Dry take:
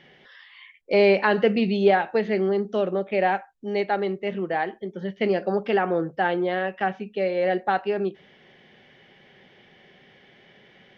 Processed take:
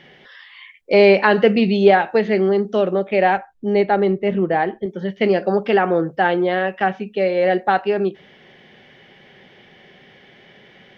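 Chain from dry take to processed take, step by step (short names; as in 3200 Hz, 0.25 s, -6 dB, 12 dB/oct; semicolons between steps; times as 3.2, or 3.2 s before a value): 3.37–4.86 tilt -2 dB/oct; gain +6 dB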